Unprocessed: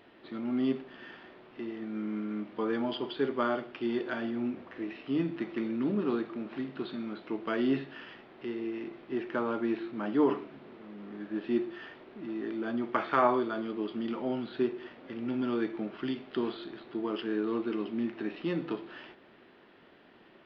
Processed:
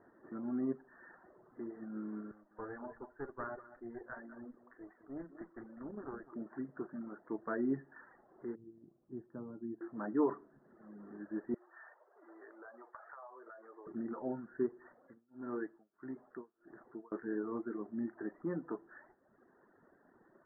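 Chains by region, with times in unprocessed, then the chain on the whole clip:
2.31–6.33 low shelf 290 Hz -12 dB + tube stage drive 29 dB, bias 0.75 + echo 0.197 s -8 dB
8.55–9.81 dynamic EQ 130 Hz, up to +3 dB, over -42 dBFS, Q 0.73 + band-pass 110 Hz, Q 0.95
11.54–13.87 HPF 520 Hz 24 dB/oct + compressor 10:1, threshold -42 dBFS
14.96–17.12 low shelf 410 Hz -4 dB + tremolo 1.6 Hz, depth 96%
whole clip: reverb removal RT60 1.1 s; steep low-pass 1800 Hz 96 dB/oct; gain -5 dB

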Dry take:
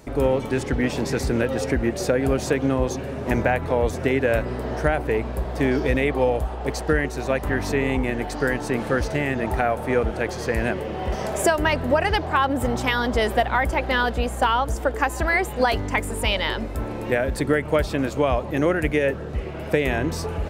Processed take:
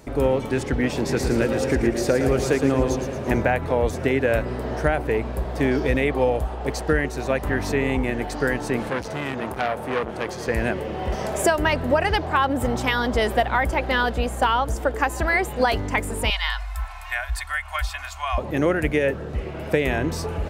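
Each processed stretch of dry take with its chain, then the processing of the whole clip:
0.97–3.38 bell 360 Hz +3 dB 0.25 oct + feedback echo 0.113 s, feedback 51%, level -7.5 dB
8.89–10.48 HPF 100 Hz + core saturation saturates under 1800 Hz
16.3–18.38 inverse Chebyshev band-stop 110–490 Hz + comb 2.8 ms, depth 59%
whole clip: dry

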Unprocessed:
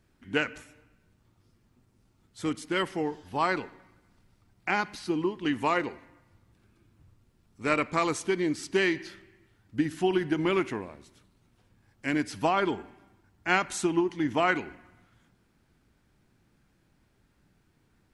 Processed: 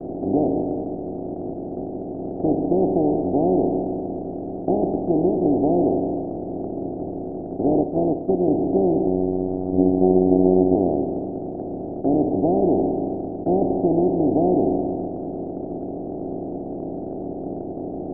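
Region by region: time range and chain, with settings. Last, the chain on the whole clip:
7.81–8.48 notch 820 Hz + upward expander 2.5:1, over -36 dBFS
9.06–10.75 robotiser 92.4 Hz + tilt -4 dB/oct
whole clip: per-bin compression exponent 0.2; steep low-pass 750 Hz 72 dB/oct; expander -20 dBFS

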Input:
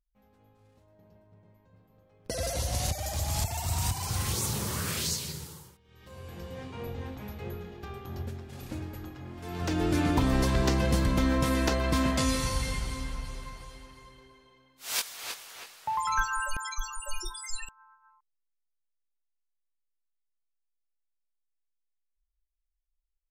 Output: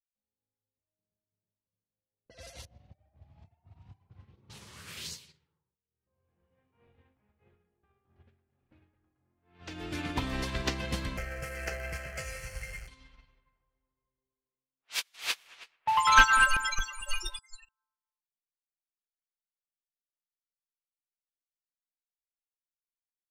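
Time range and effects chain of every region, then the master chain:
2.65–4.5 band-pass 170 Hz, Q 0.64 + doubler 31 ms -9 dB
11.17–12.88 zero-crossing step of -29.5 dBFS + fixed phaser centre 1000 Hz, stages 6
15.14–17.39 sample leveller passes 2 + analogue delay 0.223 s, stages 4096, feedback 46%, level -8 dB
whole clip: bell 2700 Hz +10 dB 1.9 oct; low-pass opened by the level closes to 580 Hz, open at -25 dBFS; upward expander 2.5:1, over -40 dBFS; gain +2 dB

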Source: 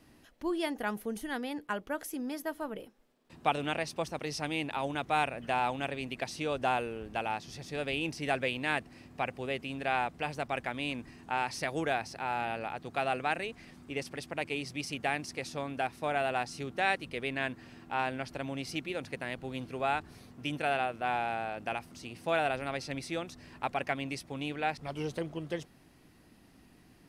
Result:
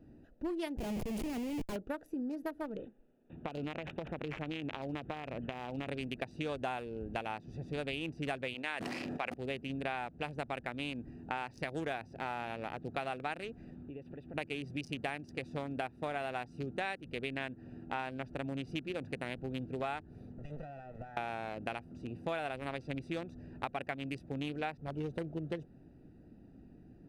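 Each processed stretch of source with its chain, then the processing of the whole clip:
0.77–1.76 low shelf 89 Hz +7.5 dB + Schmitt trigger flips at -47.5 dBFS
2.66–5.87 high shelf 4200 Hz +9.5 dB + compressor 10:1, threshold -34 dBFS + careless resampling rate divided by 6×, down none, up filtered
8.54–9.34 weighting filter A + sustainer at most 26 dB/s
13.74–14.34 resonant high shelf 4400 Hz -9.5 dB, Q 1.5 + compressor 3:1, threshold -47 dBFS
20.38–21.17 minimum comb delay 1.5 ms + bell 1900 Hz +9.5 dB 0.25 oct + compressor 16:1, threshold -40 dBFS
whole clip: Wiener smoothing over 41 samples; compressor 5:1, threshold -40 dBFS; gain +5 dB

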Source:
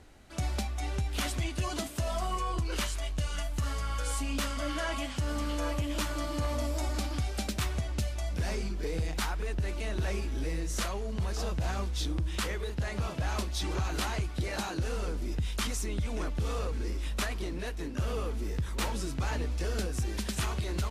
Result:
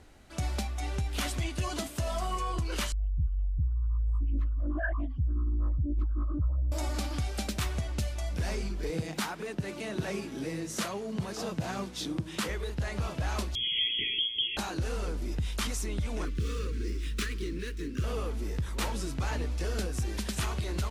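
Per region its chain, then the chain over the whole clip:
2.92–6.72 spectral contrast raised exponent 3.2 + comb 2.5 ms, depth 85% + Doppler distortion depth 0.51 ms
8.9–12.49 HPF 140 Hz 24 dB/oct + low shelf 220 Hz +9 dB
13.55–14.57 inverted band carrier 3300 Hz + brick-wall FIR band-stop 470–1900 Hz
16.25–18.04 median filter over 3 samples + Butterworth band-stop 730 Hz, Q 0.72 + bell 430 Hz +5.5 dB 0.91 oct
whole clip: dry

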